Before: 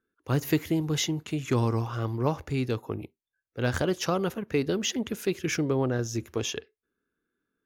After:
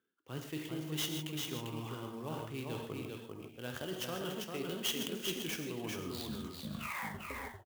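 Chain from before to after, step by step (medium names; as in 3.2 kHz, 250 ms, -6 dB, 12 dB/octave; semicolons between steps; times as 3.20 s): tape stop on the ending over 2.09 s; gated-style reverb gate 180 ms flat, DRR 5 dB; reverse; compression 6:1, threshold -35 dBFS, peak gain reduction 16 dB; reverse; high-pass 130 Hz 12 dB/octave; peaking EQ 3.1 kHz +11.5 dB 0.4 oct; on a send: delay 396 ms -4 dB; on the sum: dynamic bell 6.4 kHz, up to +6 dB, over -57 dBFS, Q 2.4; sampling jitter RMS 0.026 ms; trim -3.5 dB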